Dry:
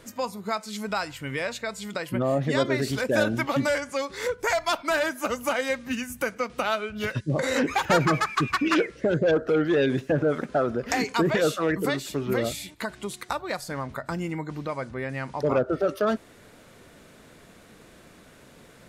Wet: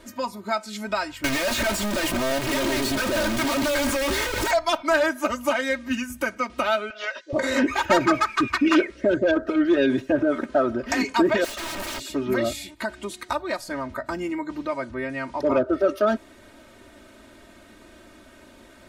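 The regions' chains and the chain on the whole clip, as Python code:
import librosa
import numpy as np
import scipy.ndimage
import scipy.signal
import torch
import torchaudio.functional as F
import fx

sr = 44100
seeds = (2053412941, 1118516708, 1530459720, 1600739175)

y = fx.chain(x, sr, fx.clip_1bit(),
    fx.band_squash(depth_pct=100), at=(1.24, 4.51))
y = fx.chain(y, sr, fx.cheby1_bandpass(low_hz=560.0, high_hz=6200.0, order=3),
    fx.band_squash(depth_pct=40), at=(6.9, 7.33))
y = fx.chain(y, sr, fx.overflow_wrap(gain_db=28.0),
    fx.doppler_dist(depth_ms=0.21), at=(11.44, 12.0))
y = fx.high_shelf(y, sr, hz=5900.0, db=-5.0)
y = y + 0.93 * np.pad(y, (int(3.2 * sr / 1000.0), 0))[:len(y)]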